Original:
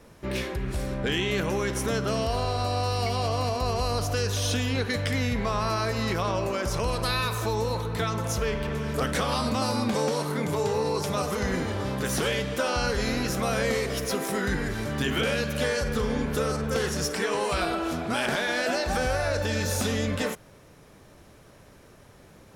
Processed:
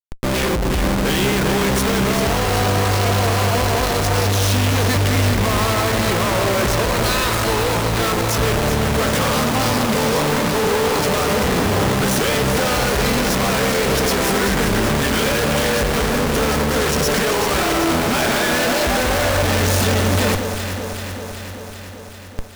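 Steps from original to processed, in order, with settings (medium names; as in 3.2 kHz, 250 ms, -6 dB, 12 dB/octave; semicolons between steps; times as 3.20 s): Schmitt trigger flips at -40 dBFS; echo whose repeats swap between lows and highs 193 ms, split 1.2 kHz, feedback 83%, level -6.5 dB; trim +8.5 dB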